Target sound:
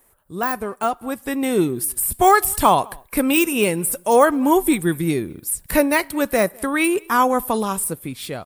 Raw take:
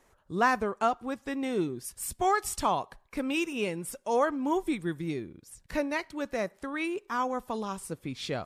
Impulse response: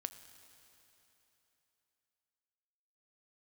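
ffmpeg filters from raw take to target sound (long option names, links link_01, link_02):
-filter_complex "[0:a]asplit=2[link_01][link_02];[link_02]adelay=204.1,volume=-27dB,highshelf=frequency=4000:gain=-4.59[link_03];[link_01][link_03]amix=inputs=2:normalize=0,deesser=0.9,aexciter=amount=7.1:drive=6.7:freq=8700,dynaudnorm=framelen=120:gausssize=17:maxgain=12.5dB,volume=1.5dB"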